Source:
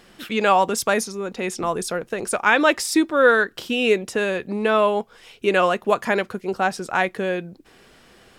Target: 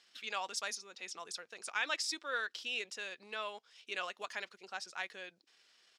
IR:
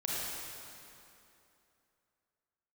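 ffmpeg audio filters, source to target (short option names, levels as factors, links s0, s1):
-af "bandpass=f=5300:t=q:w=1.5:csg=0,highshelf=f=5300:g=-9,atempo=1.4,volume=0.708"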